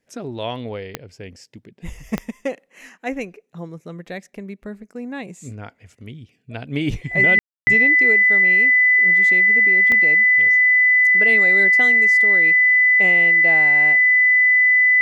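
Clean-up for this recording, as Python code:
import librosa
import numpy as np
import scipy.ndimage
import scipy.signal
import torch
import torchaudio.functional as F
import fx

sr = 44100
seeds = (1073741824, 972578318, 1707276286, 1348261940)

y = fx.fix_declick_ar(x, sr, threshold=10.0)
y = fx.notch(y, sr, hz=2000.0, q=30.0)
y = fx.fix_ambience(y, sr, seeds[0], print_start_s=1.33, print_end_s=1.83, start_s=7.39, end_s=7.67)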